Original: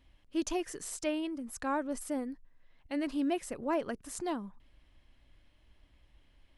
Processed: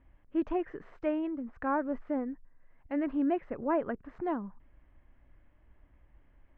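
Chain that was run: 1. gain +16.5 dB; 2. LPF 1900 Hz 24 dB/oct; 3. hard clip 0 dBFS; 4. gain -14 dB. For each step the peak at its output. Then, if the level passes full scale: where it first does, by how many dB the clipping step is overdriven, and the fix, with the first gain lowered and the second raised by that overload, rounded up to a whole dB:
-4.0, -5.0, -5.0, -19.0 dBFS; no overload

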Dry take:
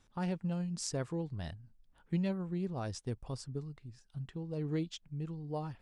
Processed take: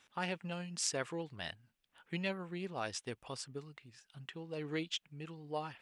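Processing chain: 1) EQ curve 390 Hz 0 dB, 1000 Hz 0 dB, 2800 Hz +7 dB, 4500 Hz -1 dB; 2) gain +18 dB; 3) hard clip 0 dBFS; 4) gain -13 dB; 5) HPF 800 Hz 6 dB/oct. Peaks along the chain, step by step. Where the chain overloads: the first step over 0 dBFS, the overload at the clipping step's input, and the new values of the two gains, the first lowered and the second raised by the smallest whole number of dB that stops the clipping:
-20.5, -2.5, -2.5, -15.5, -15.5 dBFS; no overload

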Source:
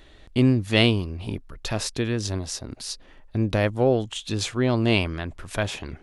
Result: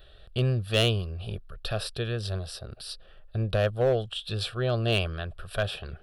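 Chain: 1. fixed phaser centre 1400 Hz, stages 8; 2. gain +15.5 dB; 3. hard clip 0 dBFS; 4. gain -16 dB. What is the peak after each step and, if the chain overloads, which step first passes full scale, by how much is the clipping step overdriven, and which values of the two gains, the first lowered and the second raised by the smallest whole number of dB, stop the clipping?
-7.5, +8.0, 0.0, -16.0 dBFS; step 2, 8.0 dB; step 2 +7.5 dB, step 4 -8 dB

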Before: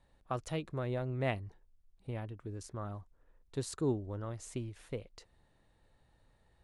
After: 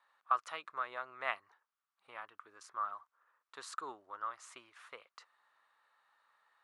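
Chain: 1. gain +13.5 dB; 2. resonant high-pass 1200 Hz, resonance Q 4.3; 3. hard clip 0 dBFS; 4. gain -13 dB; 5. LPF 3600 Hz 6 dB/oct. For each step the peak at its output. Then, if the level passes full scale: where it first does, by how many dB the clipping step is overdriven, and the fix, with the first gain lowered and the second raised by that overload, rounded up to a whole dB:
-8.0, -3.5, -3.5, -16.5, -17.5 dBFS; no overload

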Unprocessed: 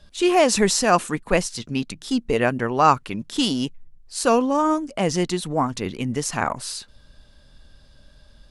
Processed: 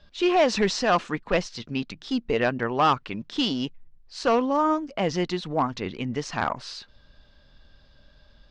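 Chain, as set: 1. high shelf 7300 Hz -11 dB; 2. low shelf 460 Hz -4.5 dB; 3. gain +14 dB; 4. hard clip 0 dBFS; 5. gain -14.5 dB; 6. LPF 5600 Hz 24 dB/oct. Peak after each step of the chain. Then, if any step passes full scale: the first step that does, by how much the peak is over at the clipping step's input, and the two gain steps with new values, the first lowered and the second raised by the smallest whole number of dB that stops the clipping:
-3.5, -4.0, +10.0, 0.0, -14.5, -13.0 dBFS; step 3, 10.0 dB; step 3 +4 dB, step 5 -4.5 dB

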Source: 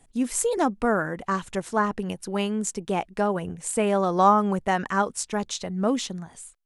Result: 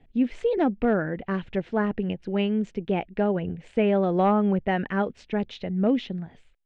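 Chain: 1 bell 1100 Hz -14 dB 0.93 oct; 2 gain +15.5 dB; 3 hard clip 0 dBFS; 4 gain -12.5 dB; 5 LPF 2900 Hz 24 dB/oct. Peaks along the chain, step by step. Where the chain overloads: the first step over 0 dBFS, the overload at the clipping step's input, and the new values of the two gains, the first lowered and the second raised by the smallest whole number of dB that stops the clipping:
-10.5, +5.0, 0.0, -12.5, -12.0 dBFS; step 2, 5.0 dB; step 2 +10.5 dB, step 4 -7.5 dB

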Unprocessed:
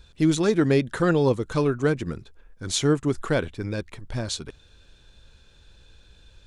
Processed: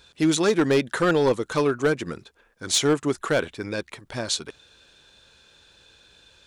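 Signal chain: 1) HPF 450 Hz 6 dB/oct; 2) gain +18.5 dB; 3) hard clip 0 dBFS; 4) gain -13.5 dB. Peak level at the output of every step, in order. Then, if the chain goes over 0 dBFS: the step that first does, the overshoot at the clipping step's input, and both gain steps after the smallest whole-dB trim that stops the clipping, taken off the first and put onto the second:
-9.5, +9.0, 0.0, -13.5 dBFS; step 2, 9.0 dB; step 2 +9.5 dB, step 4 -4.5 dB

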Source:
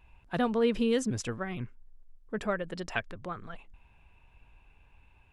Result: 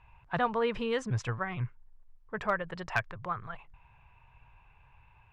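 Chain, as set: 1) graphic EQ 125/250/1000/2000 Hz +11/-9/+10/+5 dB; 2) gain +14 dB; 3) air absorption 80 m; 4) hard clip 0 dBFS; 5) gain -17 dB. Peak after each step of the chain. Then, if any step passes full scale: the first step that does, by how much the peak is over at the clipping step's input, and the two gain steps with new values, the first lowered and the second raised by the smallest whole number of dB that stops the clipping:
-8.5, +5.5, +5.0, 0.0, -17.0 dBFS; step 2, 5.0 dB; step 2 +9 dB, step 5 -12 dB

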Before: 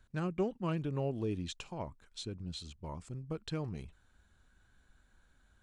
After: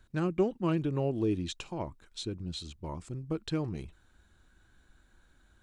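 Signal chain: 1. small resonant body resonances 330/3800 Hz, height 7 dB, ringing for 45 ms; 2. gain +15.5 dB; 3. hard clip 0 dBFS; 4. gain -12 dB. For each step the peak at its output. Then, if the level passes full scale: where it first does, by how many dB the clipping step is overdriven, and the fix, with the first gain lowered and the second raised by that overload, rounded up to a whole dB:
-19.0, -3.5, -3.5, -15.5 dBFS; no overload

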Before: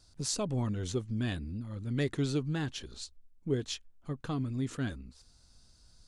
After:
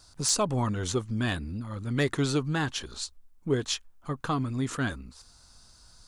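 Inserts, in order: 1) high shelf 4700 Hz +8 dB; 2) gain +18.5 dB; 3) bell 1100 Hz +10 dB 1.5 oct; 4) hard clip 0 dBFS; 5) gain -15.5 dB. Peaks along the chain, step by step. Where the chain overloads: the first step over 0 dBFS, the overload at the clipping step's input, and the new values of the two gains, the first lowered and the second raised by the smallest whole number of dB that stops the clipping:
-11.0, +7.5, +7.5, 0.0, -15.5 dBFS; step 2, 7.5 dB; step 2 +10.5 dB, step 5 -7.5 dB

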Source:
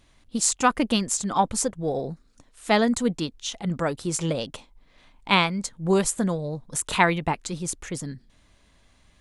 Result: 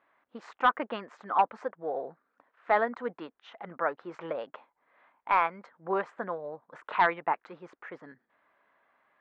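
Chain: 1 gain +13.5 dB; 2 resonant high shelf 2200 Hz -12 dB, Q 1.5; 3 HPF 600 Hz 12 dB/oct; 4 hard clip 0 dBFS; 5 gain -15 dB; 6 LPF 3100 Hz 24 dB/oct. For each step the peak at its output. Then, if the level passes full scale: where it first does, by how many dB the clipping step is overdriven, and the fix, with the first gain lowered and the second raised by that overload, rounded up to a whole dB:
+10.0, +9.5, +9.0, 0.0, -15.0, -13.5 dBFS; step 1, 9.0 dB; step 1 +4.5 dB, step 5 -6 dB

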